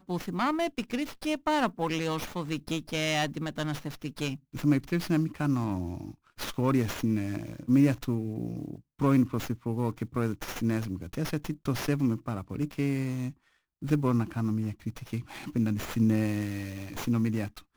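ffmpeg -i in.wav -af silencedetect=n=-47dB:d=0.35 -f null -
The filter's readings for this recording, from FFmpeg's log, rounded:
silence_start: 13.32
silence_end: 13.82 | silence_duration: 0.50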